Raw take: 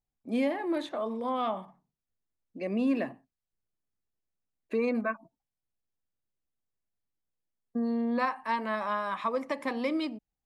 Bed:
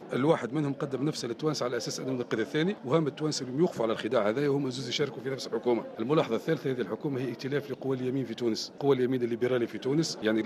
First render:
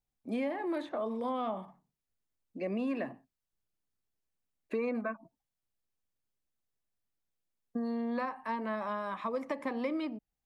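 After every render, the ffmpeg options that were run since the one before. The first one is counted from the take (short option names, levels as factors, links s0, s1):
-filter_complex "[0:a]acrossover=split=630|2300[s0][s1][s2];[s0]acompressor=threshold=0.0224:ratio=4[s3];[s1]acompressor=threshold=0.0126:ratio=4[s4];[s2]acompressor=threshold=0.00141:ratio=4[s5];[s3][s4][s5]amix=inputs=3:normalize=0"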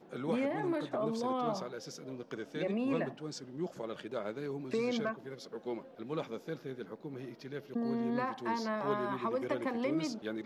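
-filter_complex "[1:a]volume=0.251[s0];[0:a][s0]amix=inputs=2:normalize=0"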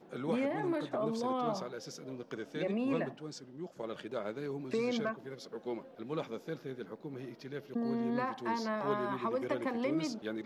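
-filter_complex "[0:a]asplit=2[s0][s1];[s0]atrim=end=3.79,asetpts=PTS-STARTPTS,afade=t=out:st=2.94:d=0.85:silence=0.398107[s2];[s1]atrim=start=3.79,asetpts=PTS-STARTPTS,afade=t=in:d=0.004:c=hsin:silence=0.398107[s3];[s2][s3]concat=n=2:v=0:a=1"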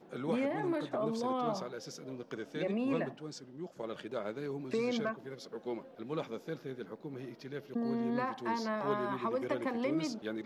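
-af anull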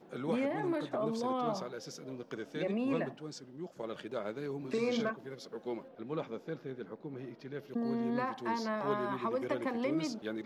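-filter_complex "[0:a]asettb=1/sr,asplit=3[s0][s1][s2];[s0]atrim=end=4.584[s3];[s1]atrim=start=4.58:end=5.11,asetpts=PTS-STARTPTS,afade=t=in:d=0.004:c=qsin,afade=t=out:st=0.526:d=0.004:c=qsin,asplit=2[s4][s5];[s5]adelay=43,volume=0.473[s6];[s4][s6]amix=inputs=2:normalize=0,atrim=end_sample=23373[s7];[s2]atrim=start=5.106[s8];[s3][s7]acrossfade=d=0.004:c1=hsin:c2=qsin[s9];[s9][s8]acrossfade=d=0.004:c1=qsin:c2=hsin,asettb=1/sr,asplit=3[s10][s11][s12];[s10]atrim=end=5.884[s13];[s11]atrim=start=5.88:end=7.59,asetpts=PTS-STARTPTS,afade=t=in:d=0.004:c=qsin,afade=t=out:st=1.706:d=0.004:c=qsin,highshelf=f=4700:g=-11.5[s14];[s12]atrim=start=7.586[s15];[s13][s14]acrossfade=d=0.004:c1=hsin:c2=qsin[s16];[s16][s15]acrossfade=d=0.004:c1=qsin:c2=hsin"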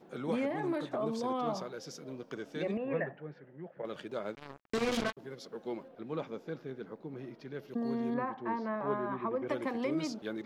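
-filter_complex "[0:a]asettb=1/sr,asplit=3[s0][s1][s2];[s0]atrim=end=2.774[s3];[s1]atrim=start=2.77:end=3.85,asetpts=PTS-STARTPTS,afade=t=in:d=0.004:c=qsin,afade=t=out:st=1.076:d=0.004:c=qsin,highpass=130,equalizer=f=150:t=q:w=4:g=5,equalizer=f=240:t=q:w=4:g=-10,equalizer=f=340:t=q:w=4:g=-4,equalizer=f=520:t=q:w=4:g=4,equalizer=f=1100:t=q:w=4:g=-6,equalizer=f=1800:t=q:w=4:g=8,lowpass=f=2300:w=0.5412,lowpass=f=2300:w=1.3066[s4];[s2]atrim=start=3.846[s5];[s3][s4]acrossfade=d=0.004:c1=hsin:c2=qsin[s6];[s6][s5]acrossfade=d=0.004:c1=qsin:c2=hsin,asettb=1/sr,asplit=3[s7][s8][s9];[s7]atrim=end=4.354[s10];[s8]atrim=start=4.35:end=5.17,asetpts=PTS-STARTPTS,afade=t=in:d=0.004:c=qsin,afade=t=out:st=0.816:d=0.004:c=qsin,acrusher=bits=4:mix=0:aa=0.5[s11];[s9]atrim=start=5.166[s12];[s10][s11]acrossfade=d=0.004:c1=hsin:c2=qsin[s13];[s13][s12]acrossfade=d=0.004:c1=qsin:c2=hsin,asettb=1/sr,asplit=3[s14][s15][s16];[s14]atrim=end=8.144[s17];[s15]atrim=start=8.14:end=9.48,asetpts=PTS-STARTPTS,afade=t=in:d=0.004:c=qsin,afade=t=out:st=1.336:d=0.004:c=qsin,lowpass=1800[s18];[s16]atrim=start=9.476[s19];[s17][s18]acrossfade=d=0.004:c1=hsin:c2=qsin[s20];[s20][s19]acrossfade=d=0.004:c1=qsin:c2=hsin"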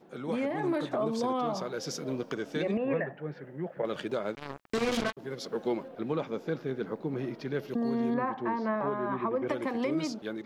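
-af "dynaudnorm=f=310:g=5:m=3.16,alimiter=limit=0.0891:level=0:latency=1:release=420"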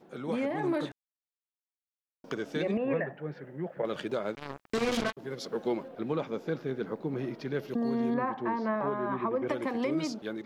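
-filter_complex "[0:a]asplit=3[s0][s1][s2];[s0]atrim=end=0.92,asetpts=PTS-STARTPTS,afade=t=out:st=0.916:d=0.004:c=hsin[s3];[s1]atrim=start=0.92:end=2.24,asetpts=PTS-STARTPTS,volume=0[s4];[s2]atrim=start=2.24,asetpts=PTS-STARTPTS,afade=t=in:d=0.004:c=hsin[s5];[s3][s4][s5]concat=n=3:v=0:a=1"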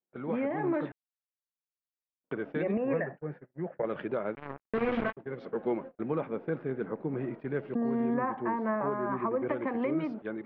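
-af "agate=range=0.00794:threshold=0.00891:ratio=16:detection=peak,lowpass=f=2300:w=0.5412,lowpass=f=2300:w=1.3066"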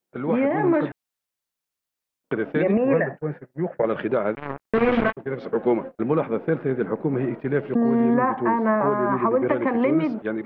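-af "volume=3.16"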